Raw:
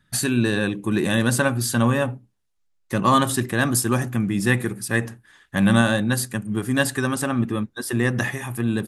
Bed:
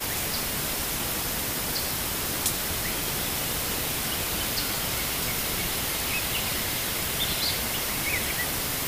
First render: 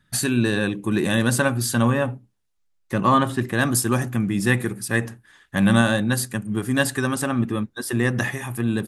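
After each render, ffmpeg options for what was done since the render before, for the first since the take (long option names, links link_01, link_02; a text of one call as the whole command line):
ffmpeg -i in.wav -filter_complex "[0:a]asettb=1/sr,asplit=3[link_01][link_02][link_03];[link_01]atrim=end=1.884[link_04];[link_02]atrim=start=1.88:end=3.53,asetpts=PTS-STARTPTS,afade=type=in:duration=0.004:curve=qsin,afade=type=out:start_time=1.646:duration=0.004:curve=qsin,acrossover=split=3000[link_05][link_06];[link_06]acompressor=threshold=-42dB:ratio=4:attack=1:release=60[link_07];[link_05][link_07]amix=inputs=2:normalize=0[link_08];[link_03]atrim=start=3.526[link_09];[link_04][link_08]acrossfade=duration=0.004:curve1=hsin:curve2=qsin[link_10];[link_10][link_09]acrossfade=duration=0.004:curve1=qsin:curve2=hsin" out.wav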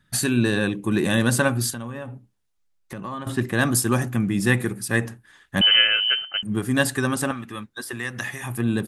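ffmpeg -i in.wav -filter_complex "[0:a]asettb=1/sr,asplit=3[link_01][link_02][link_03];[link_01]atrim=end=1.704[link_04];[link_02]atrim=start=1.7:end=3.27,asetpts=PTS-STARTPTS,afade=type=in:duration=0.004:curve=qsin,afade=type=out:start_time=1.566:duration=0.004:curve=qsin,acompressor=threshold=-32dB:ratio=4:attack=3.2:release=140:knee=1:detection=peak[link_05];[link_03]atrim=start=3.266[link_06];[link_04][link_05]acrossfade=duration=0.004:curve1=hsin:curve2=qsin[link_07];[link_07][link_06]acrossfade=duration=0.004:curve1=qsin:curve2=hsin,asettb=1/sr,asplit=3[link_08][link_09][link_10];[link_08]atrim=end=5.614[link_11];[link_09]atrim=start=5.61:end=6.43,asetpts=PTS-STARTPTS,afade=type=in:duration=0.004:curve=qsin,afade=type=out:start_time=0.816:duration=0.004:curve=qsin,lowpass=frequency=2700:width_type=q:width=0.5098,lowpass=frequency=2700:width_type=q:width=0.6013,lowpass=frequency=2700:width_type=q:width=0.9,lowpass=frequency=2700:width_type=q:width=2.563,afreqshift=-3200[link_12];[link_10]atrim=start=6.426[link_13];[link_11][link_12]acrossfade=duration=0.004:curve1=hsin:curve2=qsin[link_14];[link_14][link_13]acrossfade=duration=0.004:curve1=qsin:curve2=hsin,asettb=1/sr,asplit=3[link_15][link_16][link_17];[link_15]atrim=end=7.314[link_18];[link_16]atrim=start=7.31:end=8.44,asetpts=PTS-STARTPTS,afade=type=in:duration=0.004:curve=qsin,afade=type=out:start_time=1.126:duration=0.004:curve=qsin,acrossover=split=960|2600[link_19][link_20][link_21];[link_19]acompressor=threshold=-35dB:ratio=4[link_22];[link_20]acompressor=threshold=-30dB:ratio=4[link_23];[link_21]acompressor=threshold=-35dB:ratio=4[link_24];[link_22][link_23][link_24]amix=inputs=3:normalize=0[link_25];[link_17]atrim=start=8.436[link_26];[link_18][link_25]acrossfade=duration=0.004:curve1=hsin:curve2=qsin[link_27];[link_27][link_26]acrossfade=duration=0.004:curve1=qsin:curve2=hsin" out.wav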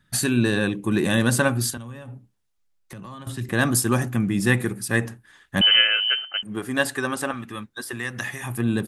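ffmpeg -i in.wav -filter_complex "[0:a]asettb=1/sr,asplit=3[link_01][link_02][link_03];[link_01]atrim=end=1.774[link_04];[link_02]atrim=start=1.77:end=3.49,asetpts=PTS-STARTPTS,afade=type=in:duration=0.004:curve=qsin,afade=type=out:start_time=1.716:duration=0.004:curve=qsin,acrossover=split=150|3000[link_05][link_06][link_07];[link_06]acompressor=threshold=-44dB:ratio=2:attack=3.2:release=140:knee=2.83:detection=peak[link_08];[link_05][link_08][link_07]amix=inputs=3:normalize=0[link_09];[link_03]atrim=start=3.486[link_10];[link_04][link_09]acrossfade=duration=0.004:curve1=hsin:curve2=qsin[link_11];[link_11][link_10]acrossfade=duration=0.004:curve1=qsin:curve2=hsin,asettb=1/sr,asplit=3[link_12][link_13][link_14];[link_12]atrim=end=5.814[link_15];[link_13]atrim=start=5.81:end=7.34,asetpts=PTS-STARTPTS,afade=type=in:duration=0.004:curve=qsin,afade=type=out:start_time=1.526:duration=0.004:curve=qsin,bass=frequency=250:gain=-11,treble=frequency=4000:gain=-4[link_16];[link_14]atrim=start=7.336[link_17];[link_15][link_16]acrossfade=duration=0.004:curve1=hsin:curve2=qsin[link_18];[link_18][link_17]acrossfade=duration=0.004:curve1=qsin:curve2=hsin" out.wav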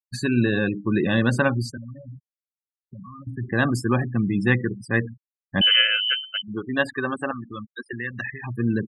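ffmpeg -i in.wav -af "afftfilt=real='re*gte(hypot(re,im),0.0501)':imag='im*gte(hypot(re,im),0.0501)':win_size=1024:overlap=0.75,lowpass=4000" out.wav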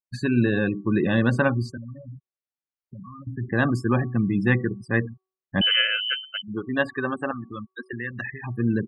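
ffmpeg -i in.wav -af "lowpass=frequency=2500:poles=1,bandreject=frequency=376.4:width_type=h:width=4,bandreject=frequency=752.8:width_type=h:width=4,bandreject=frequency=1129.2:width_type=h:width=4" out.wav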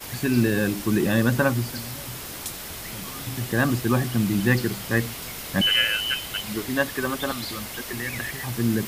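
ffmpeg -i in.wav -i bed.wav -filter_complex "[1:a]volume=-7dB[link_01];[0:a][link_01]amix=inputs=2:normalize=0" out.wav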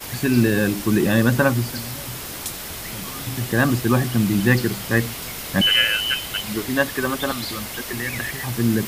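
ffmpeg -i in.wav -af "volume=3.5dB" out.wav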